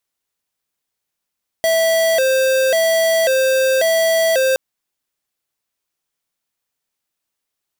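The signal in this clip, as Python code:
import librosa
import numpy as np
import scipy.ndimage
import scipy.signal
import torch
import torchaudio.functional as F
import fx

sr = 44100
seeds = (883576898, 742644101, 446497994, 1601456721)

y = fx.siren(sr, length_s=2.92, kind='hi-lo', low_hz=526.0, high_hz=655.0, per_s=0.92, wave='square', level_db=-15.0)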